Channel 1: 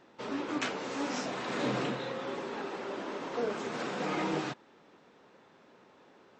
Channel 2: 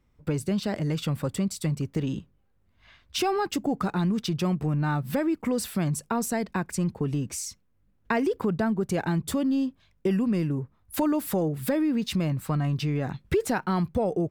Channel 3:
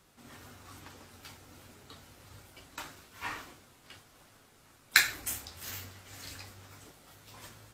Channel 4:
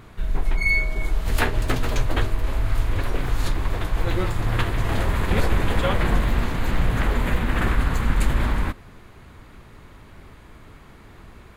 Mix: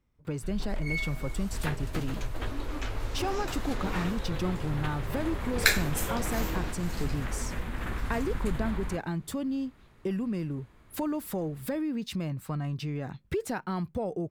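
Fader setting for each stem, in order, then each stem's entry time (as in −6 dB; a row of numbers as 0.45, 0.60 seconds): −6.0, −6.5, 0.0, −12.5 decibels; 2.20, 0.00, 0.70, 0.25 seconds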